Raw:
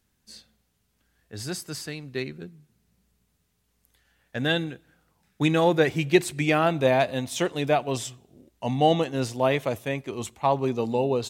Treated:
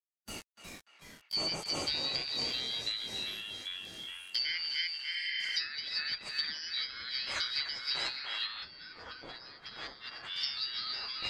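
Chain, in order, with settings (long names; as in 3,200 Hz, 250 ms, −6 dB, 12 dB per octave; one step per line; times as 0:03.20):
band-splitting scrambler in four parts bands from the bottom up 4321
bit reduction 8 bits
dynamic equaliser 4,000 Hz, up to −6 dB, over −36 dBFS, Q 3
feedback echo with a band-pass in the loop 294 ms, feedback 54%, band-pass 1,800 Hz, level −8 dB
downward compressor 4 to 1, threshold −33 dBFS, peak gain reduction 15 dB
delay with pitch and tempo change per echo 309 ms, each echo −3 semitones, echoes 3, each echo −6 dB
0:05.16–0:05.54: healed spectral selection 1,600–5,600 Hz before
0:08.06–0:10.22: high-shelf EQ 2,300 Hz +7.5 dB
harmonic and percussive parts rebalanced harmonic +8 dB
treble cut that deepens with the level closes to 780 Hz, closed at −20 dBFS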